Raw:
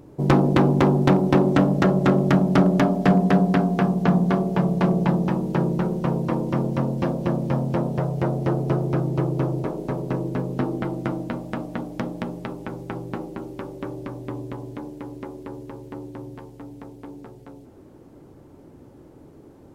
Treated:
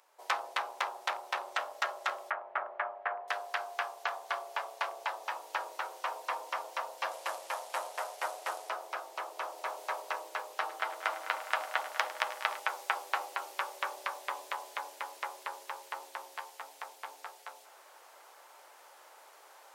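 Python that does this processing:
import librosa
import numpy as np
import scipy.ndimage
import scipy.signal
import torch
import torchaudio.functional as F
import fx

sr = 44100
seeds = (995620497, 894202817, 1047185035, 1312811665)

y = fx.lowpass(x, sr, hz=2000.0, slope=24, at=(2.3, 3.28))
y = fx.cvsd(y, sr, bps=64000, at=(7.11, 8.69))
y = fx.echo_heads(y, sr, ms=103, heads='first and second', feedback_pct=67, wet_db=-16.0, at=(10.5, 12.6))
y = fx.rider(y, sr, range_db=10, speed_s=0.5)
y = scipy.signal.sosfilt(scipy.signal.bessel(6, 1200.0, 'highpass', norm='mag', fs=sr, output='sos'), y)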